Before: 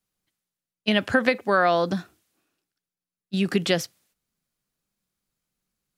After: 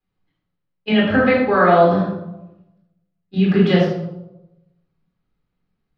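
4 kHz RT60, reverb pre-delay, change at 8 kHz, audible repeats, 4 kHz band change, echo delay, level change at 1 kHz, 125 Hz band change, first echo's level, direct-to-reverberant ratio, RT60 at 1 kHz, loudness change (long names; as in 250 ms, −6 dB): 0.55 s, 19 ms, below −15 dB, no echo audible, +0.5 dB, no echo audible, +7.0 dB, +11.5 dB, no echo audible, −5.0 dB, 0.85 s, +7.0 dB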